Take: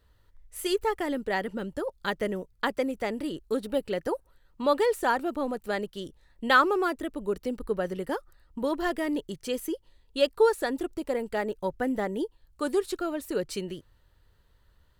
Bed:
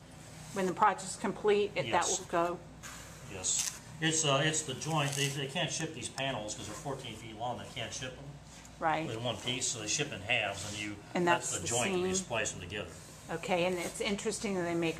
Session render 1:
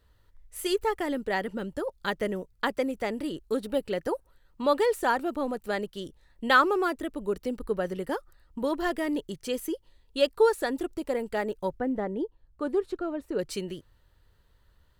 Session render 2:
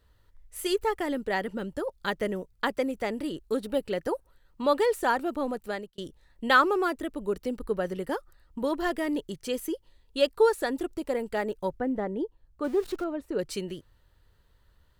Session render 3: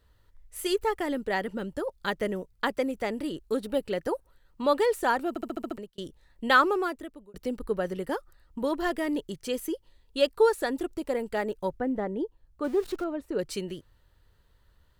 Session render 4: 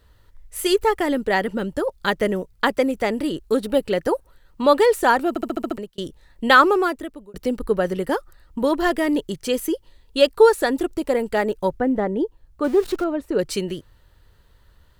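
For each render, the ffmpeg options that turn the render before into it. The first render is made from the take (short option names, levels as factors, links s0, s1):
-filter_complex "[0:a]asettb=1/sr,asplit=3[s0][s1][s2];[s0]atrim=end=11.794[s3];[s1]atrim=start=11.79:end=13.39,asetpts=PTS-STARTPTS,afade=t=in:d=0.004:c=qsin,afade=t=out:st=1.596:d=0.004:c=qsin,lowpass=f=1000:p=1[s4];[s2]atrim=start=13.386[s5];[s3][s4]acrossfade=d=0.004:c1=hsin:c2=qsin[s6];[s6][s5]acrossfade=d=0.004:c1=qsin:c2=hsin"
-filter_complex "[0:a]asettb=1/sr,asplit=3[s0][s1][s2];[s0]atrim=end=12.644[s3];[s1]atrim=start=12.64:end=13.04,asetpts=PTS-STARTPTS,afade=t=in:d=0.004:c=qsin,afade=t=out:st=0.396:d=0.004:c=qsin,aeval=exprs='val(0)+0.5*0.00944*sgn(val(0))':c=same[s4];[s2]atrim=start=13.036[s5];[s3][s4]acrossfade=d=0.004:c1=hsin:c2=qsin[s6];[s6][s5]acrossfade=d=0.004:c1=qsin:c2=hsin,asplit=2[s7][s8];[s7]atrim=end=5.98,asetpts=PTS-STARTPTS,afade=t=out:st=5.46:d=0.52:c=qsin[s9];[s8]atrim=start=5.98,asetpts=PTS-STARTPTS,afade=t=in:d=0.004:c=hsin[s10];[s9][s10]concat=n=2:v=0:a=1"
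-filter_complex "[0:a]asplit=9[s0][s1][s2][s3][s4][s5][s6][s7][s8];[s0]atrim=end=5.362[s9];[s1]atrim=start=5.288:end=5.362[s10];[s2]atrim=start=5.288:end=5.362[s11];[s3]atrim=start=5.288:end=5.362[s12];[s4]atrim=start=5.288:end=5.362[s13];[s5]atrim=start=5.288:end=5.362[s14];[s6]atrim=start=5.288:end=5.362[s15];[s7]atrim=start=5.778:end=7.34,asetpts=PTS-STARTPTS,afade=t=out:st=0.912:d=0.65[s16];[s8]atrim=start=7.34,asetpts=PTS-STARTPTS,afade=t=in:d=0.004:c=hsin[s17];[s9][s10]acrossfade=d=0.004:c1=hsin:c2=hsin[s18];[s18][s11]acrossfade=d=0.004:c1=hsin:c2=hsin[s19];[s19][s12]acrossfade=d=0.004:c1=hsin:c2=hsin[s20];[s20][s13]acrossfade=d=0.004:c1=hsin:c2=hsin[s21];[s21][s14]acrossfade=d=0.004:c1=hsin:c2=hsin[s22];[s22][s15]acrossfade=d=0.004:c1=hsin:c2=hsin[s23];[s16][s17]concat=n=2:v=0:a=1[s24];[s23][s24]acrossfade=d=0.004:c1=hsin:c2=hsin"
-af "volume=2.66,alimiter=limit=0.708:level=0:latency=1"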